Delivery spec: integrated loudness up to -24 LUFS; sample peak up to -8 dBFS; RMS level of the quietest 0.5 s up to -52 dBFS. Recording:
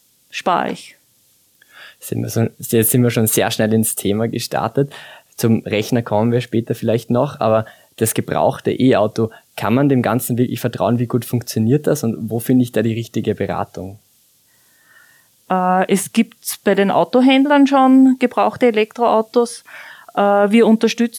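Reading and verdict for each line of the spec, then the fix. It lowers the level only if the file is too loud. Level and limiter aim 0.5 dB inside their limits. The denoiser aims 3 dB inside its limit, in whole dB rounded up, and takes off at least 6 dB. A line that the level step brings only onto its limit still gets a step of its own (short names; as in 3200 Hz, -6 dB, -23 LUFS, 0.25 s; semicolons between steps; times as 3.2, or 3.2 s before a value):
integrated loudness -16.5 LUFS: fail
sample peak -3.5 dBFS: fail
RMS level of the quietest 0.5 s -57 dBFS: OK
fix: gain -8 dB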